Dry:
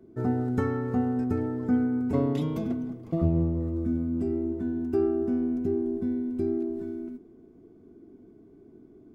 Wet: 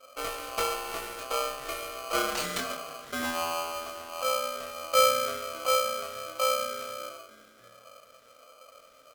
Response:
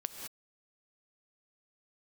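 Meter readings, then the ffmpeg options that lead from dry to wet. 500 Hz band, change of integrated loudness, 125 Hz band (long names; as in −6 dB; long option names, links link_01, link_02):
−0.5 dB, −1.5 dB, −23.5 dB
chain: -filter_complex "[0:a]bass=frequency=250:gain=-13,treble=frequency=4000:gain=0,bandreject=frequency=50:width_type=h:width=6,bandreject=frequency=100:width_type=h:width=6,bandreject=frequency=150:width_type=h:width=6,bandreject=frequency=200:width_type=h:width=6,bandreject=frequency=250:width_type=h:width=6,crystalizer=i=6.5:c=0,acrossover=split=510[link_01][link_02];[link_01]aeval=exprs='val(0)*(1-0.7/2+0.7/2*cos(2*PI*1.4*n/s))':channel_layout=same[link_03];[link_02]aeval=exprs='val(0)*(1-0.7/2-0.7/2*cos(2*PI*1.4*n/s))':channel_layout=same[link_04];[link_03][link_04]amix=inputs=2:normalize=0,acrusher=samples=4:mix=1:aa=0.000001,asuperstop=centerf=740:order=4:qfactor=5.6,asplit=2[link_05][link_06];[link_06]adelay=23,volume=-3.5dB[link_07];[link_05][link_07]amix=inputs=2:normalize=0,asplit=5[link_08][link_09][link_10][link_11][link_12];[link_09]adelay=298,afreqshift=100,volume=-23.5dB[link_13];[link_10]adelay=596,afreqshift=200,volume=-28.5dB[link_14];[link_11]adelay=894,afreqshift=300,volume=-33.6dB[link_15];[link_12]adelay=1192,afreqshift=400,volume=-38.6dB[link_16];[link_08][link_13][link_14][link_15][link_16]amix=inputs=5:normalize=0[link_17];[1:a]atrim=start_sample=2205,atrim=end_sample=4410,asetrate=27342,aresample=44100[link_18];[link_17][link_18]afir=irnorm=-1:irlink=0,aeval=exprs='val(0)*sgn(sin(2*PI*910*n/s))':channel_layout=same,volume=2.5dB"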